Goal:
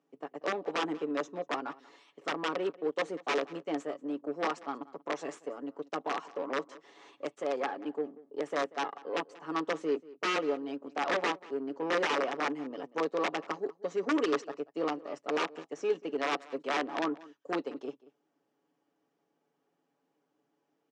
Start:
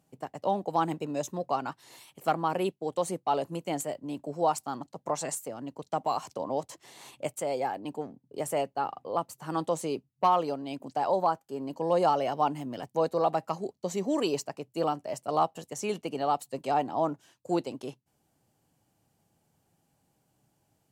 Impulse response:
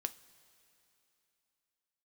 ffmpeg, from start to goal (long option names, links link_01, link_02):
-filter_complex "[0:a]aecho=1:1:7.1:0.52,aeval=exprs='(mod(8.41*val(0)+1,2)-1)/8.41':channel_layout=same,aeval=exprs='0.126*(cos(1*acos(clip(val(0)/0.126,-1,1)))-cos(1*PI/2))+0.00794*(cos(8*acos(clip(val(0)/0.126,-1,1)))-cos(8*PI/2))':channel_layout=same,highpass=frequency=210:width=0.5412,highpass=frequency=210:width=1.3066,equalizer=frequency=320:width_type=q:width=4:gain=7,equalizer=frequency=460:width_type=q:width=4:gain=9,equalizer=frequency=1200:width_type=q:width=4:gain=7,equalizer=frequency=1800:width_type=q:width=4:gain=4,equalizer=frequency=4400:width_type=q:width=4:gain=-6,lowpass=frequency=5400:width=0.5412,lowpass=frequency=5400:width=1.3066,asplit=2[link_01][link_02];[link_02]adelay=186.6,volume=-20dB,highshelf=frequency=4000:gain=-4.2[link_03];[link_01][link_03]amix=inputs=2:normalize=0,volume=-7.5dB"